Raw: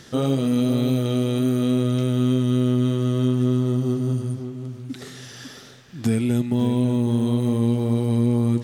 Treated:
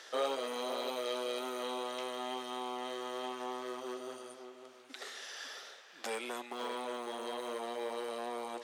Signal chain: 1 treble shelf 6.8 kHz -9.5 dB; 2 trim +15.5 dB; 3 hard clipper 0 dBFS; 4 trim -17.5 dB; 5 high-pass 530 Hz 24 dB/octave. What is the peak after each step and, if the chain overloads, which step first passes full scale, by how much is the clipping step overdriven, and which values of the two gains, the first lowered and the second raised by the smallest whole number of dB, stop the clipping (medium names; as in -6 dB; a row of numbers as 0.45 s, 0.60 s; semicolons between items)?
-9.5 dBFS, +6.0 dBFS, 0.0 dBFS, -17.5 dBFS, -22.0 dBFS; step 2, 6.0 dB; step 2 +9.5 dB, step 4 -11.5 dB